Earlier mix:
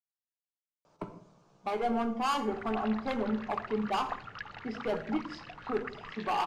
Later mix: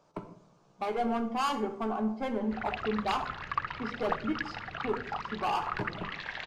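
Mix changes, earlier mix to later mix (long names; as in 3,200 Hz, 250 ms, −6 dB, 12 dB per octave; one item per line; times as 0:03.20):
speech: entry −0.85 s
background +6.0 dB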